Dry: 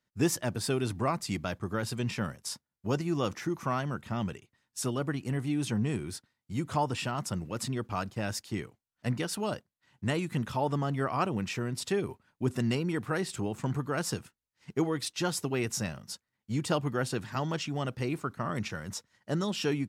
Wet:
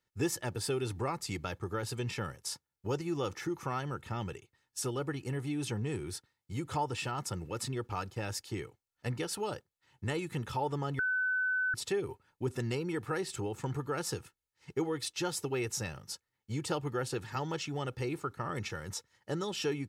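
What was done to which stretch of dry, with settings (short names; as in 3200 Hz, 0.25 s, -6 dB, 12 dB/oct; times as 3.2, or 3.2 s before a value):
10.99–11.74 bleep 1510 Hz -17 dBFS
whole clip: comb 2.3 ms, depth 55%; compressor 1.5:1, threshold -34 dBFS; gain -1.5 dB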